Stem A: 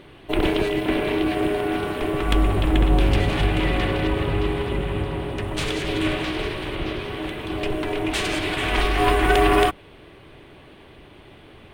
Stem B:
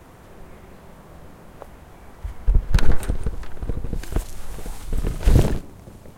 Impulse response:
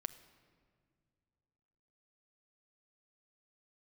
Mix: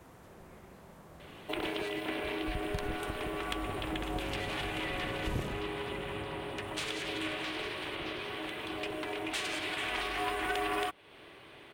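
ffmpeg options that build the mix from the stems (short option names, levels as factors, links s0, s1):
-filter_complex "[0:a]lowshelf=f=430:g=-10.5,adelay=1200,volume=0.794[s0];[1:a]volume=0.422[s1];[s0][s1]amix=inputs=2:normalize=0,highpass=f=91:p=1,acompressor=threshold=0.0126:ratio=2"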